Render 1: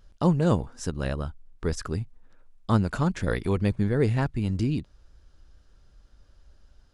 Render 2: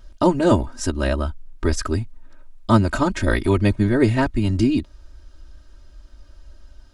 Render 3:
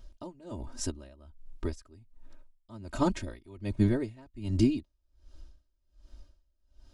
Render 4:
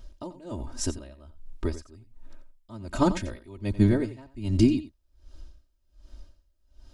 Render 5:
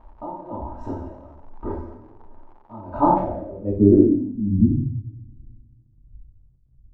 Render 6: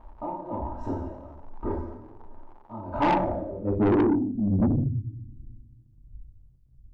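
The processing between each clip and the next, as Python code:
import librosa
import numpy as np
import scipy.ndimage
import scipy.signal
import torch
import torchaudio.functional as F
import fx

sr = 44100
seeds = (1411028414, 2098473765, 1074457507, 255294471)

y1 = x + 0.97 * np.pad(x, (int(3.2 * sr / 1000.0), 0))[:len(x)]
y1 = y1 * 10.0 ** (6.0 / 20.0)
y2 = fx.peak_eq(y1, sr, hz=1500.0, db=-6.5, octaves=0.88)
y2 = y2 * 10.0 ** (-28 * (0.5 - 0.5 * np.cos(2.0 * np.pi * 1.3 * np.arange(len(y2)) / sr)) / 20.0)
y2 = y2 * 10.0 ** (-5.0 / 20.0)
y3 = y2 + 10.0 ** (-14.0 / 20.0) * np.pad(y2, (int(89 * sr / 1000.0), 0))[:len(y2)]
y3 = y3 * 10.0 ** (4.5 / 20.0)
y4 = fx.rev_double_slope(y3, sr, seeds[0], early_s=0.75, late_s=2.3, knee_db=-18, drr_db=-6.0)
y4 = fx.dmg_crackle(y4, sr, seeds[1], per_s=150.0, level_db=-31.0)
y4 = fx.filter_sweep_lowpass(y4, sr, from_hz=900.0, to_hz=130.0, start_s=3.11, end_s=4.97, q=5.4)
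y4 = y4 * 10.0 ** (-5.0 / 20.0)
y5 = 10.0 ** (-17.5 / 20.0) * np.tanh(y4 / 10.0 ** (-17.5 / 20.0))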